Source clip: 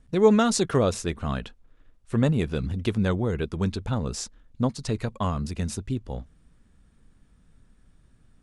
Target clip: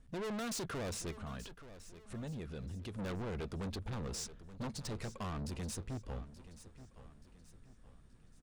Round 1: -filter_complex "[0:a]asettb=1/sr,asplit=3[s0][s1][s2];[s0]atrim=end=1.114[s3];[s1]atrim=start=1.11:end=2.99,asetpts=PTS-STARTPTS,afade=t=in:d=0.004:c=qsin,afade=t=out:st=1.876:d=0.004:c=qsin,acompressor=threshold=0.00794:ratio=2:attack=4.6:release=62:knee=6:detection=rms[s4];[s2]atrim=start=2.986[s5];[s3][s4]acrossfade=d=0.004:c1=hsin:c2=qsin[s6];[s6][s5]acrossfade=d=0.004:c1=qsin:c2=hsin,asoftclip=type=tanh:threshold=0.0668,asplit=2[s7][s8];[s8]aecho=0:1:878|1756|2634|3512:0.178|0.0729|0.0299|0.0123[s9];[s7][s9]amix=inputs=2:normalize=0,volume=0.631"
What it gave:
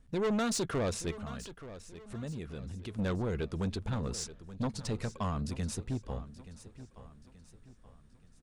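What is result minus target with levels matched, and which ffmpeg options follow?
saturation: distortion -5 dB
-filter_complex "[0:a]asettb=1/sr,asplit=3[s0][s1][s2];[s0]atrim=end=1.114[s3];[s1]atrim=start=1.11:end=2.99,asetpts=PTS-STARTPTS,afade=t=in:d=0.004:c=qsin,afade=t=out:st=1.876:d=0.004:c=qsin,acompressor=threshold=0.00794:ratio=2:attack=4.6:release=62:knee=6:detection=rms[s4];[s2]atrim=start=2.986[s5];[s3][s4]acrossfade=d=0.004:c1=hsin:c2=qsin[s6];[s6][s5]acrossfade=d=0.004:c1=qsin:c2=hsin,asoftclip=type=tanh:threshold=0.02,asplit=2[s7][s8];[s8]aecho=0:1:878|1756|2634|3512:0.178|0.0729|0.0299|0.0123[s9];[s7][s9]amix=inputs=2:normalize=0,volume=0.631"

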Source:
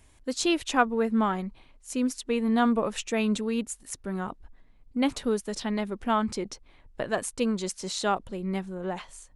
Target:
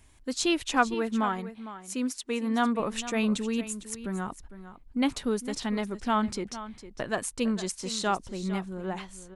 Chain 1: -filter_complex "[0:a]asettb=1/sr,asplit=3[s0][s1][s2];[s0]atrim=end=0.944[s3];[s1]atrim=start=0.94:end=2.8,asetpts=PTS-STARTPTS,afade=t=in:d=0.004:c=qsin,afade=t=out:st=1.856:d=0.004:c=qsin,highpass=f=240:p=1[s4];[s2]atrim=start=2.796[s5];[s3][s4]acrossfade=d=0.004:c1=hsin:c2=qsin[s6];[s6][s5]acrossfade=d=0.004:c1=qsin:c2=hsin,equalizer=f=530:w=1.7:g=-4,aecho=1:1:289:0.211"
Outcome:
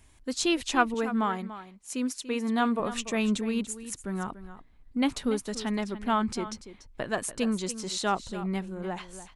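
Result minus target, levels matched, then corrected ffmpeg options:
echo 166 ms early
-filter_complex "[0:a]asettb=1/sr,asplit=3[s0][s1][s2];[s0]atrim=end=0.944[s3];[s1]atrim=start=0.94:end=2.8,asetpts=PTS-STARTPTS,afade=t=in:d=0.004:c=qsin,afade=t=out:st=1.856:d=0.004:c=qsin,highpass=f=240:p=1[s4];[s2]atrim=start=2.796[s5];[s3][s4]acrossfade=d=0.004:c1=hsin:c2=qsin[s6];[s6][s5]acrossfade=d=0.004:c1=qsin:c2=hsin,equalizer=f=530:w=1.7:g=-4,aecho=1:1:455:0.211"

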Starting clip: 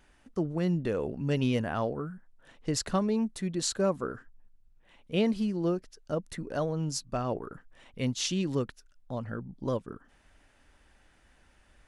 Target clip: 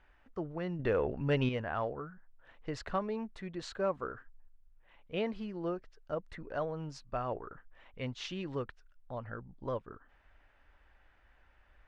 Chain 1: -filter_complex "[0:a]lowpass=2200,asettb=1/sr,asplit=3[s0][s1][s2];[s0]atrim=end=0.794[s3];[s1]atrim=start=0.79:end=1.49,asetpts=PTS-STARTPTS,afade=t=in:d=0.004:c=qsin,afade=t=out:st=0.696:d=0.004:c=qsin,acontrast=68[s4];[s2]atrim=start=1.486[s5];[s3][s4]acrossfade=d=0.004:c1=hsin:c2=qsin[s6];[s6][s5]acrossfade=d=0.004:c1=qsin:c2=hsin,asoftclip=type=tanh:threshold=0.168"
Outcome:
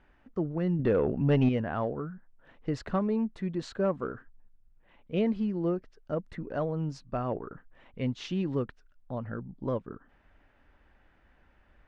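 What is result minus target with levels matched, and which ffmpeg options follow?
250 Hz band +3.5 dB
-filter_complex "[0:a]lowpass=2200,equalizer=f=210:w=0.62:g=-11.5,asettb=1/sr,asplit=3[s0][s1][s2];[s0]atrim=end=0.794[s3];[s1]atrim=start=0.79:end=1.49,asetpts=PTS-STARTPTS,afade=t=in:d=0.004:c=qsin,afade=t=out:st=0.696:d=0.004:c=qsin,acontrast=68[s4];[s2]atrim=start=1.486[s5];[s3][s4]acrossfade=d=0.004:c1=hsin:c2=qsin[s6];[s6][s5]acrossfade=d=0.004:c1=qsin:c2=hsin,asoftclip=type=tanh:threshold=0.168"

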